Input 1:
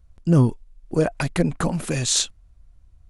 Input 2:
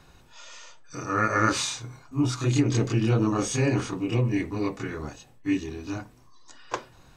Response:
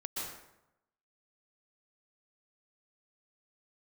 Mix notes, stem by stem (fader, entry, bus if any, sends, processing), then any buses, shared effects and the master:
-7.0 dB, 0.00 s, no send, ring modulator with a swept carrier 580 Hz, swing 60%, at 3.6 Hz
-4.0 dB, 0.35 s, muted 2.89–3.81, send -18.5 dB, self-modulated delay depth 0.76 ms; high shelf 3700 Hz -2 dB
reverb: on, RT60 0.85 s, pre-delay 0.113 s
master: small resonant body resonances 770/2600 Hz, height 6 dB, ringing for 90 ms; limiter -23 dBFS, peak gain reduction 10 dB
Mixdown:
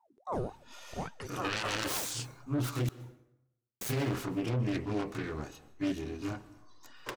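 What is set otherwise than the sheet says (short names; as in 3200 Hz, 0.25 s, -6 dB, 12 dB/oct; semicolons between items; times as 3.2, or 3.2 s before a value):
stem 1 -7.0 dB -> -16.0 dB; master: missing small resonant body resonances 770/2600 Hz, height 6 dB, ringing for 90 ms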